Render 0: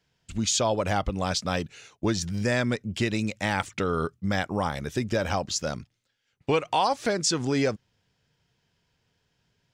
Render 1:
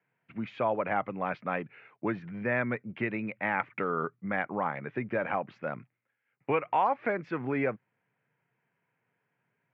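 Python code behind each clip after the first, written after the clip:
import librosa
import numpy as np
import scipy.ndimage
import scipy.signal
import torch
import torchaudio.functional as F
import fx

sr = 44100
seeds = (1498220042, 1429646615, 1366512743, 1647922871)

y = scipy.signal.sosfilt(scipy.signal.cheby1(4, 1.0, [120.0, 2300.0], 'bandpass', fs=sr, output='sos'), x)
y = fx.low_shelf(y, sr, hz=410.0, db=-8.0)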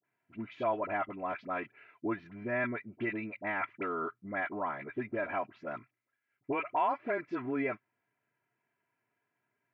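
y = x + 0.65 * np.pad(x, (int(3.0 * sr / 1000.0), 0))[:len(x)]
y = fx.dispersion(y, sr, late='highs', ms=46.0, hz=990.0)
y = y * 10.0 ** (-5.0 / 20.0)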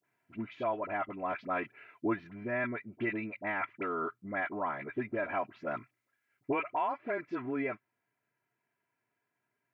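y = fx.rider(x, sr, range_db=4, speed_s=0.5)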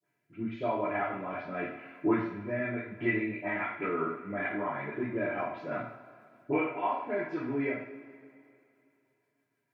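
y = fx.rotary_switch(x, sr, hz=0.85, then_hz=6.3, switch_at_s=2.88)
y = fx.rev_double_slope(y, sr, seeds[0], early_s=0.53, late_s=2.6, knee_db=-18, drr_db=-8.5)
y = y * 10.0 ** (-4.5 / 20.0)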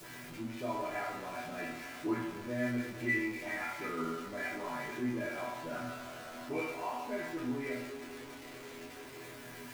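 y = x + 0.5 * 10.0 ** (-34.5 / 20.0) * np.sign(x)
y = fx.resonator_bank(y, sr, root=40, chord='fifth', decay_s=0.27)
y = y * 10.0 ** (3.0 / 20.0)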